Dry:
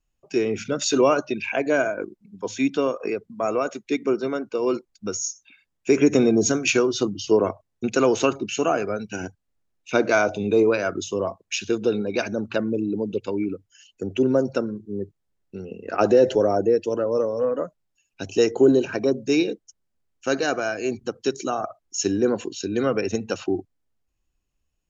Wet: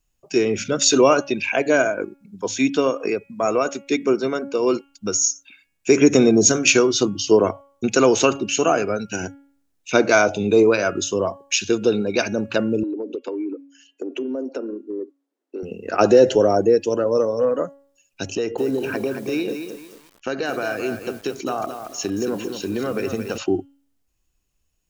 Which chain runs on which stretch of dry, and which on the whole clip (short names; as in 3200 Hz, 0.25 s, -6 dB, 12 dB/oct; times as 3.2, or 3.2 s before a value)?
12.83–15.63 steep high-pass 250 Hz 96 dB/oct + tilt -4 dB/oct + compressor, threshold -28 dBFS
18.35–23.38 LPF 3400 Hz + compressor 4:1, threshold -24 dBFS + lo-fi delay 0.223 s, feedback 35%, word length 8-bit, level -7.5 dB
whole clip: high shelf 5100 Hz +8.5 dB; de-hum 278.8 Hz, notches 12; gain +3.5 dB